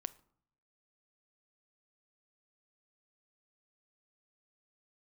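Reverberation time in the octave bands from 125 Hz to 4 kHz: 0.95, 0.80, 0.60, 0.65, 0.45, 0.35 s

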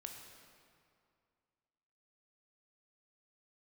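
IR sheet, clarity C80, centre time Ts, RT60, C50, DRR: 5.0 dB, 62 ms, 2.3 s, 4.0 dB, 2.5 dB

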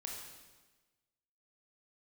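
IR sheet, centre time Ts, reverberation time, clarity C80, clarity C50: 61 ms, 1.3 s, 4.0 dB, 2.0 dB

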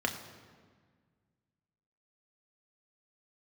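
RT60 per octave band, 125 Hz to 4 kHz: 2.4, 2.2, 1.7, 1.6, 1.5, 1.2 s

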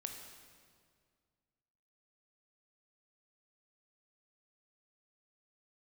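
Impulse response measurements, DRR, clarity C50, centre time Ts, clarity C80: 3.5 dB, 5.0 dB, 48 ms, 6.0 dB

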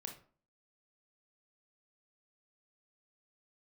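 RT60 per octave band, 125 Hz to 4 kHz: 0.50, 0.55, 0.45, 0.45, 0.35, 0.25 s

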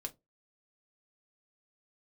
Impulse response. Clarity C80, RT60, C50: 32.0 dB, 0.20 s, 22.5 dB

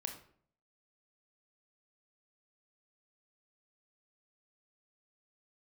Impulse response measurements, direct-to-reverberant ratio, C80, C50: 4.0 dB, 12.0 dB, 8.0 dB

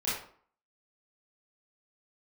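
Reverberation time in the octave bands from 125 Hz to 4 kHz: 0.45, 0.55, 0.50, 0.55, 0.40, 0.35 s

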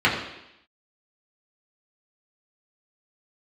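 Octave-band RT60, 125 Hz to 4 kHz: 0.70, 0.85, 0.80, 0.85, 0.90, 0.90 s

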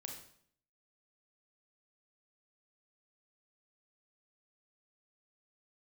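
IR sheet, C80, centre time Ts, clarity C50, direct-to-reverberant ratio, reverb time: 8.0 dB, 31 ms, 5.0 dB, 1.0 dB, 0.60 s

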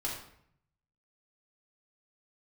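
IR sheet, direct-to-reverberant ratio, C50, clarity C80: -5.0 dB, 3.5 dB, 7.0 dB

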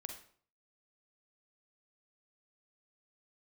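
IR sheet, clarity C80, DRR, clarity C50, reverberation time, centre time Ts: 11.0 dB, 4.0 dB, 6.5 dB, 0.50 s, 20 ms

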